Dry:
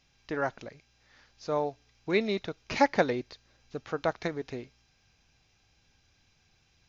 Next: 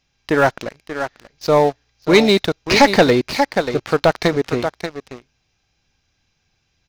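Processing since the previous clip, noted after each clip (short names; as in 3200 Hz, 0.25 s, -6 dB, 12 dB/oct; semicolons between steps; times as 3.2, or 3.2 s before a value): dynamic EQ 4500 Hz, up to +6 dB, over -52 dBFS, Q 1.8; echo 0.585 s -10 dB; sample leveller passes 3; gain +5.5 dB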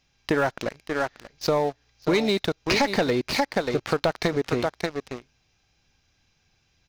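compressor 6:1, threshold -20 dBFS, peak gain reduction 12.5 dB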